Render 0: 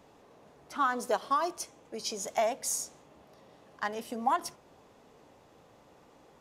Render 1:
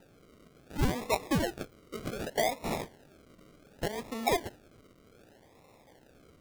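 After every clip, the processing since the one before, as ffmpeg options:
-af "bandreject=f=98.01:t=h:w=4,bandreject=f=196.02:t=h:w=4,bandreject=f=294.03:t=h:w=4,bandreject=f=392.04:t=h:w=4,bandreject=f=490.05:t=h:w=4,acrusher=samples=40:mix=1:aa=0.000001:lfo=1:lforange=24:lforate=0.66"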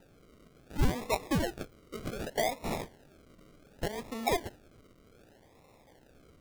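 -af "lowshelf=f=64:g=7,volume=0.841"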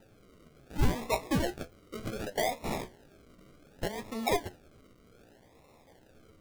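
-af "flanger=delay=9.1:depth=8.3:regen=50:speed=0.48:shape=sinusoidal,volume=1.68"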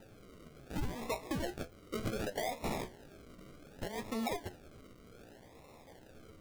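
-af "acompressor=threshold=0.0282:ratio=6,alimiter=level_in=2.11:limit=0.0631:level=0:latency=1:release=299,volume=0.473,volume=1.41"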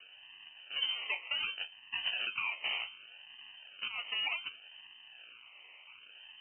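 -af "lowpass=f=2600:t=q:w=0.5098,lowpass=f=2600:t=q:w=0.6013,lowpass=f=2600:t=q:w=0.9,lowpass=f=2600:t=q:w=2.563,afreqshift=-3100,volume=1.12"

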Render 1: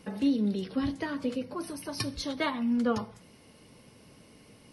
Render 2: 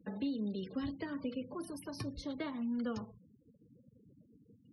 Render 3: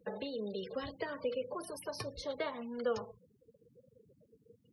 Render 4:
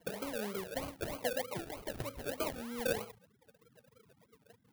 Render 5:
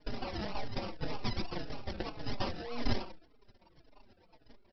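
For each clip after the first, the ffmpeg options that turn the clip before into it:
-filter_complex "[0:a]afftfilt=real='re*gte(hypot(re,im),0.00708)':imag='im*gte(hypot(re,im),0.00708)':win_size=1024:overlap=0.75,acrossover=split=450|1600[s0][s1][s2];[s0]acompressor=threshold=0.0282:ratio=4[s3];[s1]acompressor=threshold=0.00631:ratio=4[s4];[s2]acompressor=threshold=0.00501:ratio=4[s5];[s3][s4][s5]amix=inputs=3:normalize=0,volume=0.596"
-af "lowshelf=f=370:t=q:w=3:g=-7.5,volume=1.58"
-af "acrusher=samples=34:mix=1:aa=0.000001:lfo=1:lforange=20.4:lforate=3.2,aexciter=amount=2.2:drive=3:freq=10000"
-filter_complex "[0:a]aresample=11025,aeval=exprs='abs(val(0))':c=same,aresample=44100,asplit=2[s0][s1];[s1]adelay=4.3,afreqshift=-1.8[s2];[s0][s2]amix=inputs=2:normalize=1,volume=2.82"

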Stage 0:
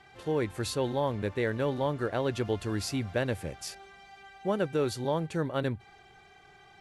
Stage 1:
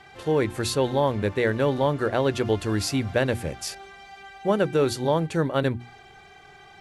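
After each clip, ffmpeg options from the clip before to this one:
-af "bandreject=f=60:t=h:w=6,bandreject=f=120:t=h:w=6,bandreject=f=180:t=h:w=6,bandreject=f=240:t=h:w=6,bandreject=f=300:t=h:w=6,bandreject=f=360:t=h:w=6,volume=2.24"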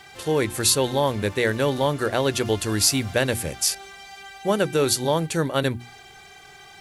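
-af "crystalizer=i=3.5:c=0"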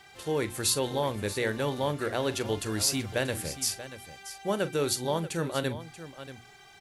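-af "aecho=1:1:41|634:0.188|0.211,volume=0.422"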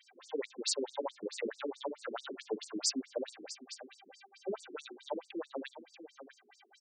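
-af "afftfilt=real='re*between(b*sr/1024,290*pow(6600/290,0.5+0.5*sin(2*PI*4.6*pts/sr))/1.41,290*pow(6600/290,0.5+0.5*sin(2*PI*4.6*pts/sr))*1.41)':imag='im*between(b*sr/1024,290*pow(6600/290,0.5+0.5*sin(2*PI*4.6*pts/sr))/1.41,290*pow(6600/290,0.5+0.5*sin(2*PI*4.6*pts/sr))*1.41)':win_size=1024:overlap=0.75,volume=0.75"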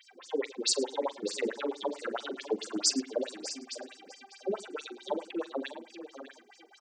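-af "aecho=1:1:42|106|598:0.141|0.112|0.178,volume=1.88"

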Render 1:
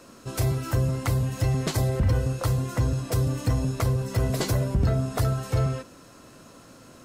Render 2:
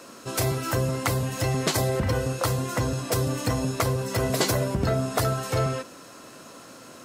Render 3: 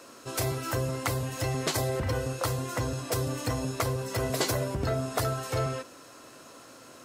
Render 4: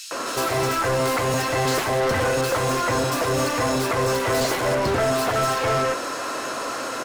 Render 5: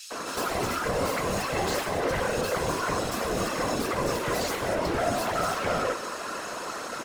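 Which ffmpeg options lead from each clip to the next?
-af "highpass=f=330:p=1,volume=2"
-af "equalizer=f=190:t=o:w=0.36:g=-10,volume=0.631"
-filter_complex "[0:a]asplit=2[s0][s1];[s1]highpass=f=720:p=1,volume=50.1,asoftclip=type=tanh:threshold=0.211[s2];[s0][s2]amix=inputs=2:normalize=0,lowpass=f=2900:p=1,volume=0.501,acrossover=split=3100[s3][s4];[s3]adelay=110[s5];[s5][s4]amix=inputs=2:normalize=0"
-af "afftfilt=real='hypot(re,im)*cos(2*PI*random(0))':imag='hypot(re,im)*sin(2*PI*random(1))':win_size=512:overlap=0.75"

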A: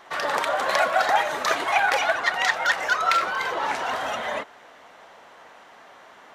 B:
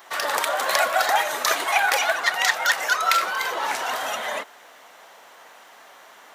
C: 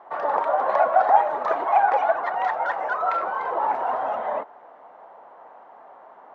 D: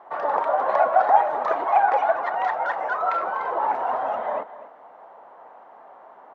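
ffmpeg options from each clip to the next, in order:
-af "aemphasis=mode=production:type=bsi"
-af "lowpass=f=850:t=q:w=1.9"
-af "aecho=1:1:246:0.168"

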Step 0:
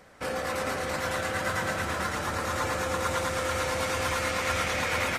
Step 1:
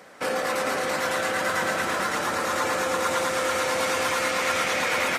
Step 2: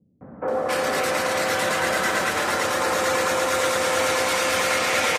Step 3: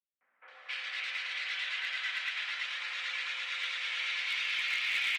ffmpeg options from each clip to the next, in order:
-filter_complex "[0:a]highpass=220,asplit=2[s0][s1];[s1]alimiter=level_in=1.12:limit=0.0631:level=0:latency=1,volume=0.891,volume=1.12[s2];[s0][s2]amix=inputs=2:normalize=0"
-filter_complex "[0:a]acrossover=split=210|1200[s0][s1][s2];[s1]adelay=210[s3];[s2]adelay=480[s4];[s0][s3][s4]amix=inputs=3:normalize=0,volume=1.68"
-af "asuperpass=centerf=2800:order=4:qfactor=1.6,volume=11.2,asoftclip=hard,volume=0.0891,volume=0.631"

